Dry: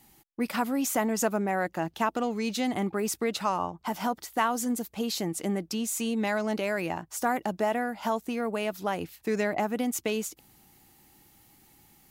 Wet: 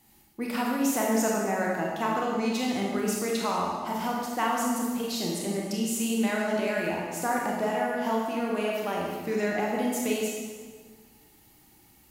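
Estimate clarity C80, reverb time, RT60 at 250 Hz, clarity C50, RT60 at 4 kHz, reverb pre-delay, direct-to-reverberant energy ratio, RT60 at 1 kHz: 2.0 dB, 1.6 s, 1.7 s, 0.0 dB, 1.3 s, 24 ms, -3.0 dB, 1.5 s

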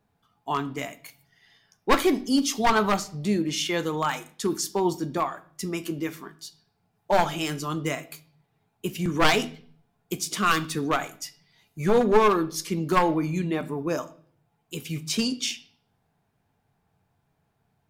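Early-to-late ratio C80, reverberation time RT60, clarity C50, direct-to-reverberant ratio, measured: 21.5 dB, 0.50 s, 18.0 dB, 10.5 dB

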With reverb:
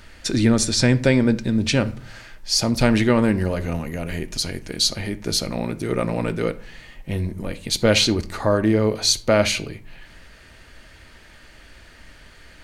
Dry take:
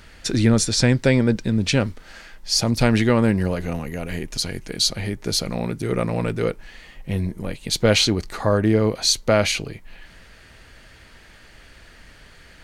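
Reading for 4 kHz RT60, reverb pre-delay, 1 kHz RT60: 0.30 s, 3 ms, 0.50 s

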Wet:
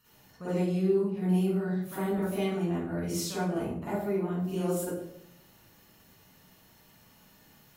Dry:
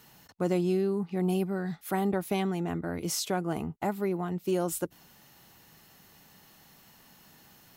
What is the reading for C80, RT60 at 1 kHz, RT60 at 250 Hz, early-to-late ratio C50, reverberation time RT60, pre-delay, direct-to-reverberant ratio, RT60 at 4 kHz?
2.0 dB, 0.60 s, 0.85 s, -4.5 dB, 0.70 s, 39 ms, -11.0 dB, 0.45 s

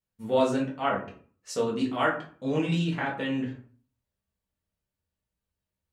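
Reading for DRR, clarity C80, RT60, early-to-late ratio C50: -4.5 dB, 12.0 dB, 0.45 s, 8.0 dB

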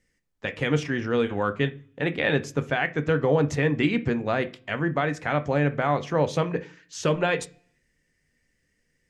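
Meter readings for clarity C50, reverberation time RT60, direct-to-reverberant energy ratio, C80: 18.0 dB, 0.40 s, 9.0 dB, 24.0 dB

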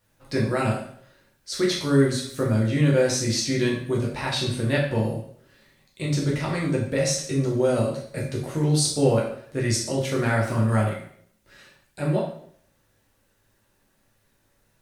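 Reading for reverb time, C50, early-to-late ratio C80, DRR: 0.60 s, 5.0 dB, 8.5 dB, -3.5 dB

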